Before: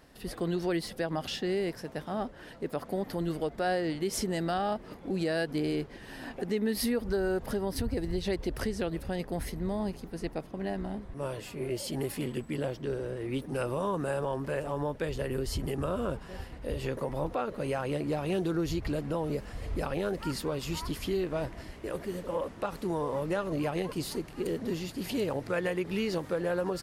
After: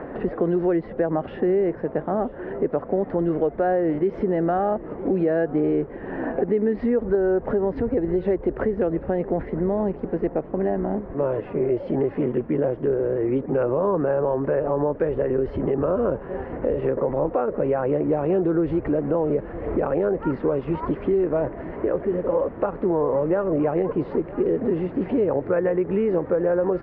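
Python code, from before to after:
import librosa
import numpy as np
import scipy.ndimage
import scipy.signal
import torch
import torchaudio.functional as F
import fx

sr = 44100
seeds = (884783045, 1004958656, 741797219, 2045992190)

p1 = scipy.signal.sosfilt(scipy.signal.butter(4, 1900.0, 'lowpass', fs=sr, output='sos'), x)
p2 = fx.peak_eq(p1, sr, hz=450.0, db=10.0, octaves=1.8)
p3 = fx.level_steps(p2, sr, step_db=17)
p4 = p2 + (p3 * librosa.db_to_amplitude(-2.0))
p5 = p4 + 10.0 ** (-21.5 / 20.0) * np.pad(p4, (int(961 * sr / 1000.0), 0))[:len(p4)]
y = fx.band_squash(p5, sr, depth_pct=70)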